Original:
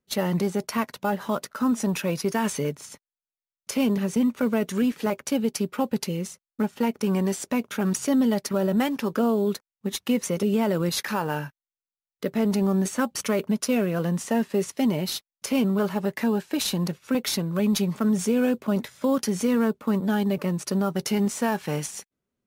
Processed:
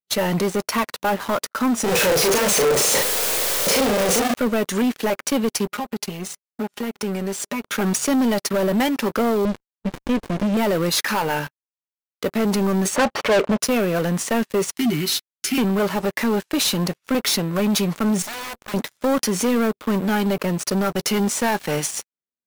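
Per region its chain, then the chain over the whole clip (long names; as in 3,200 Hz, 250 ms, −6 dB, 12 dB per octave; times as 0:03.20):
0:01.84–0:04.34: sign of each sample alone + parametric band 490 Hz +13.5 dB 0.63 octaves + double-tracking delay 38 ms −3 dB
0:05.66–0:07.63: downward compressor 2.5 to 1, threshold −37 dBFS + comb filter 4.9 ms, depth 83%
0:09.45–0:10.57: high-frequency loss of the air 68 metres + windowed peak hold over 65 samples
0:12.96–0:13.60: one scale factor per block 7 bits + low-pass filter 3,900 Hz 24 dB per octave + parametric band 660 Hz +14 dB 2.3 octaves
0:14.76–0:15.58: Chebyshev band-stop filter 390–1,300 Hz, order 5 + double-tracking delay 13 ms −7.5 dB
0:18.22–0:18.74: low-shelf EQ 330 Hz −8.5 dB + wrap-around overflow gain 25 dB + tube saturation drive 36 dB, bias 0.8
whole clip: low-shelf EQ 200 Hz −11 dB; leveller curve on the samples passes 5; level −8.5 dB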